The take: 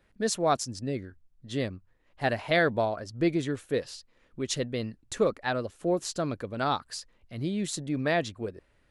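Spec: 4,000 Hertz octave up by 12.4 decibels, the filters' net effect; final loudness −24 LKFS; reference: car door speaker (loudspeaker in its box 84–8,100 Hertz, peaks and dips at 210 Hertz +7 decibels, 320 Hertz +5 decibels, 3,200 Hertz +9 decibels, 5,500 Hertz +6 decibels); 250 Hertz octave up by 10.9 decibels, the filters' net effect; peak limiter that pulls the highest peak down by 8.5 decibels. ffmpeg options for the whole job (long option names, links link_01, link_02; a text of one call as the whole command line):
ffmpeg -i in.wav -af "equalizer=frequency=250:width_type=o:gain=8.5,equalizer=frequency=4000:width_type=o:gain=9,alimiter=limit=-16dB:level=0:latency=1,highpass=84,equalizer=frequency=210:width_type=q:width=4:gain=7,equalizer=frequency=320:width_type=q:width=4:gain=5,equalizer=frequency=3200:width_type=q:width=4:gain=9,equalizer=frequency=5500:width_type=q:width=4:gain=6,lowpass=frequency=8100:width=0.5412,lowpass=frequency=8100:width=1.3066,volume=1dB" out.wav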